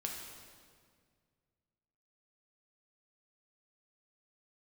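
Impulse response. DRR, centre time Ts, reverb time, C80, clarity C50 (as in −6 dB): −0.5 dB, 68 ms, 1.9 s, 4.0 dB, 2.5 dB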